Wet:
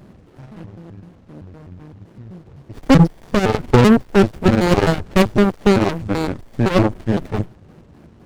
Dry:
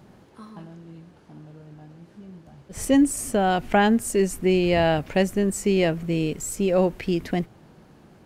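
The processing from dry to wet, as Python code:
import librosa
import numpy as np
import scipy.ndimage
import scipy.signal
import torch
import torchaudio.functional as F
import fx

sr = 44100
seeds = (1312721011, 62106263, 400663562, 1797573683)

y = fx.pitch_trill(x, sr, semitones=-9.0, every_ms=128)
y = fx.cheby_harmonics(y, sr, harmonics=(6, 8), levels_db=(-15, -11), full_scale_db=-8.0)
y = fx.running_max(y, sr, window=33)
y = y * librosa.db_to_amplitude(7.5)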